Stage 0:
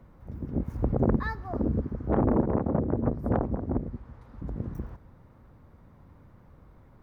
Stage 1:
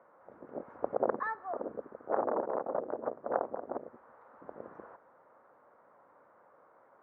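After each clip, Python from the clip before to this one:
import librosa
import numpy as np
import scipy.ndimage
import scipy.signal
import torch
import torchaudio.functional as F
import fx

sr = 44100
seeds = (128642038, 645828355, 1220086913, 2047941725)

y = scipy.signal.sosfilt(scipy.signal.cheby1(2, 1.0, [540.0, 1500.0], 'bandpass', fs=sr, output='sos'), x)
y = fx.rider(y, sr, range_db=4, speed_s=2.0)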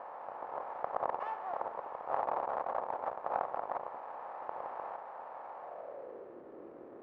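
y = fx.bin_compress(x, sr, power=0.4)
y = np.maximum(y, 0.0)
y = fx.filter_sweep_bandpass(y, sr, from_hz=840.0, to_hz=340.0, start_s=5.57, end_s=6.38, q=3.4)
y = F.gain(torch.from_numpy(y), 4.0).numpy()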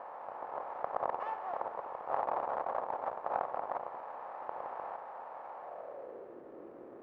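y = x + 10.0 ** (-14.0 / 20.0) * np.pad(x, (int(235 * sr / 1000.0), 0))[:len(x)]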